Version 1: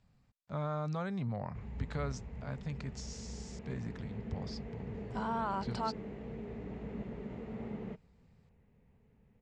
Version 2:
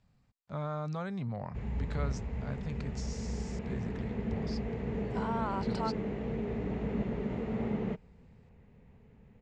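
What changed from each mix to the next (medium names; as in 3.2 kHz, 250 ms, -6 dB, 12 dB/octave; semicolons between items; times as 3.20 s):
background +8.5 dB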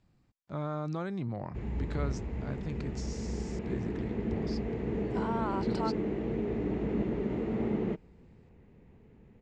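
master: add peaking EQ 330 Hz +15 dB 0.32 oct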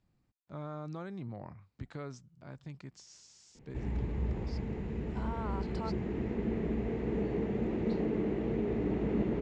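speech -6.5 dB; background: entry +2.20 s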